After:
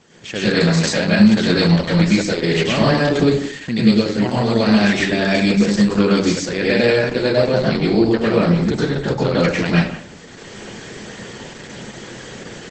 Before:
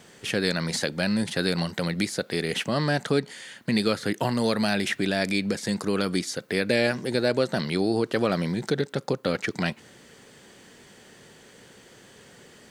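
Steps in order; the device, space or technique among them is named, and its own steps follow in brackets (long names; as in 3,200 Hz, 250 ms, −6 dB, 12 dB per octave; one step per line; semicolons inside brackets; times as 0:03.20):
0:02.96–0:04.24: dynamic equaliser 1,200 Hz, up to −7 dB, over −41 dBFS, Q 0.9
speakerphone in a meeting room (convolution reverb RT60 0.50 s, pre-delay 96 ms, DRR −5.5 dB; far-end echo of a speakerphone 170 ms, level −14 dB; automatic gain control gain up to 12.5 dB; level −1 dB; Opus 12 kbit/s 48,000 Hz)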